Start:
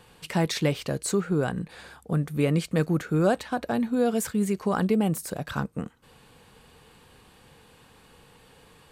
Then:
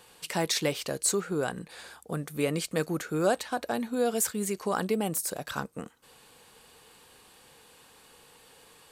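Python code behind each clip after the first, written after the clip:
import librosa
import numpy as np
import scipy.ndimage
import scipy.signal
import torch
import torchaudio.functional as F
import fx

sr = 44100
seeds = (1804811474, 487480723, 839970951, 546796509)

y = fx.bass_treble(x, sr, bass_db=-10, treble_db=7)
y = y * librosa.db_to_amplitude(-1.5)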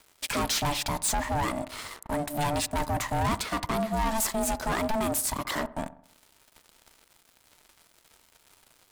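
y = fx.leveller(x, sr, passes=5)
y = y * np.sin(2.0 * np.pi * 440.0 * np.arange(len(y)) / sr)
y = fx.echo_wet_lowpass(y, sr, ms=65, feedback_pct=50, hz=1300.0, wet_db=-15.5)
y = y * librosa.db_to_amplitude(-7.5)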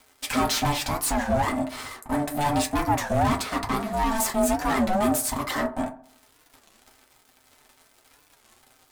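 y = fx.rev_fdn(x, sr, rt60_s=0.3, lf_ratio=0.8, hf_ratio=0.45, size_ms=23.0, drr_db=-1.0)
y = fx.record_warp(y, sr, rpm=33.33, depth_cents=250.0)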